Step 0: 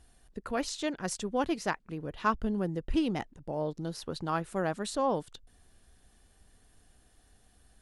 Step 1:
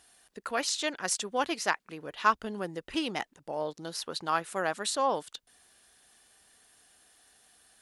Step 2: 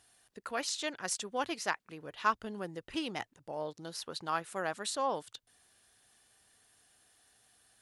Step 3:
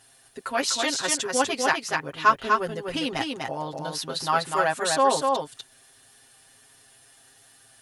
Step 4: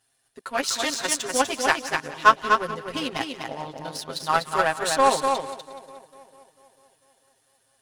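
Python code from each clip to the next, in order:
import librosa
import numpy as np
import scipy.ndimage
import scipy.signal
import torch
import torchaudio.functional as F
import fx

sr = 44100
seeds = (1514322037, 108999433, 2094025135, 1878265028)

y1 = fx.highpass(x, sr, hz=1200.0, slope=6)
y1 = y1 * librosa.db_to_amplitude(7.5)
y2 = fx.peak_eq(y1, sr, hz=110.0, db=10.0, octaves=0.53)
y2 = y2 * librosa.db_to_amplitude(-5.0)
y3 = y2 + 0.99 * np.pad(y2, (int(7.5 * sr / 1000.0), 0))[:len(y2)]
y3 = y3 + 10.0 ** (-3.5 / 20.0) * np.pad(y3, (int(247 * sr / 1000.0), 0))[:len(y3)]
y3 = y3 * librosa.db_to_amplitude(7.0)
y4 = fx.echo_split(y3, sr, split_hz=990.0, low_ms=446, high_ms=178, feedback_pct=52, wet_db=-12.0)
y4 = fx.power_curve(y4, sr, exponent=1.4)
y4 = y4 * librosa.db_to_amplitude(5.0)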